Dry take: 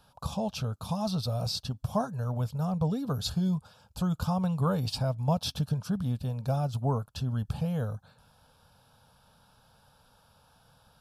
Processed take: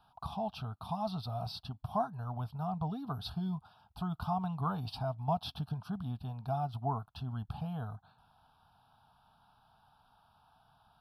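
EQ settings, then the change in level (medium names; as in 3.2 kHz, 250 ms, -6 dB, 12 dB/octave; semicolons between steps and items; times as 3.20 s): tone controls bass -4 dB, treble -7 dB; peaking EQ 700 Hz +12.5 dB 0.61 oct; static phaser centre 2 kHz, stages 6; -4.0 dB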